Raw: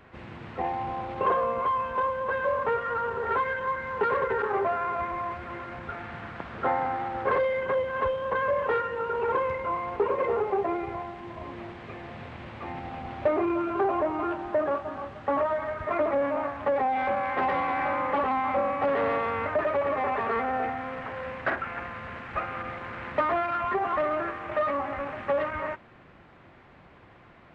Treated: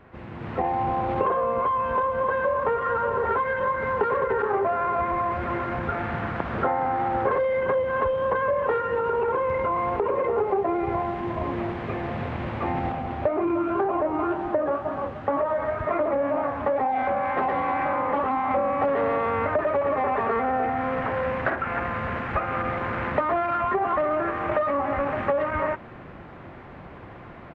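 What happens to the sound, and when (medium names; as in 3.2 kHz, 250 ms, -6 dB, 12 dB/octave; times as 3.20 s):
1.53–2.68 s: echo throw 580 ms, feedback 60%, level -10 dB
8.89–10.38 s: compression, threshold -27 dBFS
12.92–18.51 s: flange 2 Hz, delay 4.4 ms, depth 9.6 ms, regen +65%
whole clip: compression, threshold -32 dBFS; treble shelf 2.3 kHz -11 dB; level rider gain up to 9 dB; trim +3 dB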